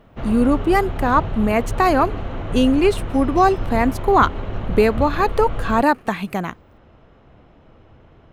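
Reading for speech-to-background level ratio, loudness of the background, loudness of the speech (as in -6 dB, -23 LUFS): 9.5 dB, -28.5 LUFS, -19.0 LUFS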